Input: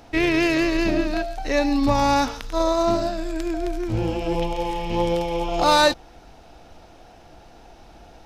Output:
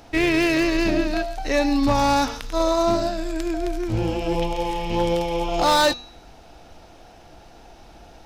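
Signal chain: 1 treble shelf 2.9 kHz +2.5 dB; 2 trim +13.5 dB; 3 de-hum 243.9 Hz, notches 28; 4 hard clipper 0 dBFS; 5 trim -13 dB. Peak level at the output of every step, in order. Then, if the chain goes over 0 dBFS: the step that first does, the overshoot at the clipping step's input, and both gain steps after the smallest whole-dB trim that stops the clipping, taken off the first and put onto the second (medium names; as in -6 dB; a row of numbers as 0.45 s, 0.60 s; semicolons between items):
-4.0 dBFS, +9.5 dBFS, +9.5 dBFS, 0.0 dBFS, -13.0 dBFS; step 2, 9.5 dB; step 2 +3.5 dB, step 5 -3 dB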